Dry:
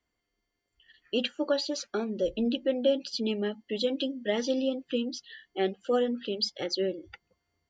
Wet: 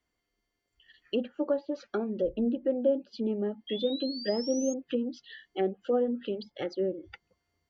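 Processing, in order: low-pass that closes with the level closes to 830 Hz, closed at -26 dBFS; painted sound rise, 3.67–4.74 s, 3.2–6.6 kHz -41 dBFS

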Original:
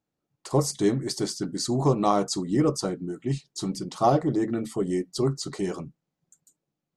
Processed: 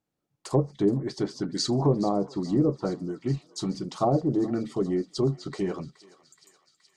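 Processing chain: low-pass that closes with the level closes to 580 Hz, closed at -19 dBFS; 1.48–2.02 s: treble shelf 2.2 kHz +10.5 dB; thinning echo 423 ms, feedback 80%, high-pass 1.1 kHz, level -17 dB

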